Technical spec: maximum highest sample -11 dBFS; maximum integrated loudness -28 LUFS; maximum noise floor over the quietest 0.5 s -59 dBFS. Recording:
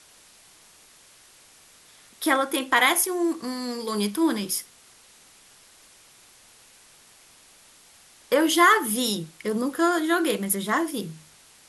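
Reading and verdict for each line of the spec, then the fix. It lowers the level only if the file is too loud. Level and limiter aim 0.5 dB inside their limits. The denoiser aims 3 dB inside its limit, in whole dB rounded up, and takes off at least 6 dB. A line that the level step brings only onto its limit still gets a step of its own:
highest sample -5.5 dBFS: fail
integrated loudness -23.5 LUFS: fail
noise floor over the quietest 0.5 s -54 dBFS: fail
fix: noise reduction 6 dB, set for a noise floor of -54 dBFS; trim -5 dB; peak limiter -11.5 dBFS

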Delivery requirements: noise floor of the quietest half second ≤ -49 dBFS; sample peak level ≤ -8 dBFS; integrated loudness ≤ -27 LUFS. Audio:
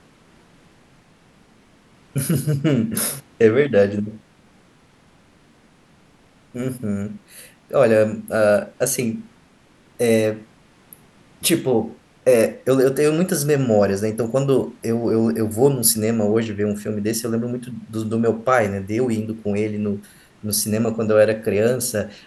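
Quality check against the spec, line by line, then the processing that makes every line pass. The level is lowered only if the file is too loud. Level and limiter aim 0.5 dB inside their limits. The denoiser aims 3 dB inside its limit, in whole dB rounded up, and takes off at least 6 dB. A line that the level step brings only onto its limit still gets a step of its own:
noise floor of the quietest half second -53 dBFS: pass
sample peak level -2.0 dBFS: fail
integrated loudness -20.0 LUFS: fail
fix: trim -7.5 dB

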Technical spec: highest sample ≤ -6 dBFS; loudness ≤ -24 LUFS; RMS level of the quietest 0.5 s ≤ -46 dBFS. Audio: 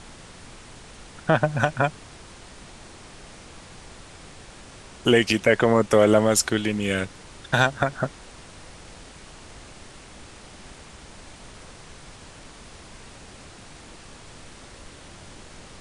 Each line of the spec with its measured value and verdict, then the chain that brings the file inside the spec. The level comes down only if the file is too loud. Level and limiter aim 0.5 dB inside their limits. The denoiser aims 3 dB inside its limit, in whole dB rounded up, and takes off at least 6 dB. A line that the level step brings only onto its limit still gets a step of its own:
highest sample -2.5 dBFS: fail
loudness -21.5 LUFS: fail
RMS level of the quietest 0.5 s -44 dBFS: fail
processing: trim -3 dB; peak limiter -6.5 dBFS

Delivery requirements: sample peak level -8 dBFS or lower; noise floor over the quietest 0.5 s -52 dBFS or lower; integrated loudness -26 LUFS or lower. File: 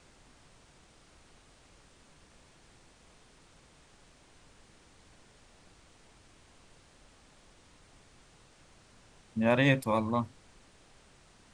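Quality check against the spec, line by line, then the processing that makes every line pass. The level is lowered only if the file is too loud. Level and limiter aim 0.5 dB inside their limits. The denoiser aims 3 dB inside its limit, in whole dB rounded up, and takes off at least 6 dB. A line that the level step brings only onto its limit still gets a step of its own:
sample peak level -11.0 dBFS: pass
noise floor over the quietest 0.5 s -60 dBFS: pass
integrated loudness -29.0 LUFS: pass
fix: none needed

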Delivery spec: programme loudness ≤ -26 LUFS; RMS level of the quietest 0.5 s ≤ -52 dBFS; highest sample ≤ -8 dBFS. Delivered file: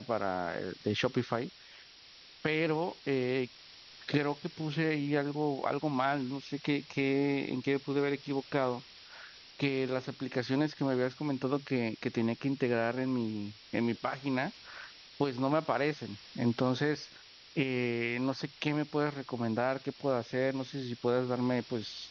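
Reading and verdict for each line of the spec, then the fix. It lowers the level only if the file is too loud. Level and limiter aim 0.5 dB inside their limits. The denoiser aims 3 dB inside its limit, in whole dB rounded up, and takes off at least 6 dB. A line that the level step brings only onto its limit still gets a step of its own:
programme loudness -33.0 LUFS: pass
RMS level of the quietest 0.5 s -55 dBFS: pass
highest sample -13.5 dBFS: pass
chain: none needed

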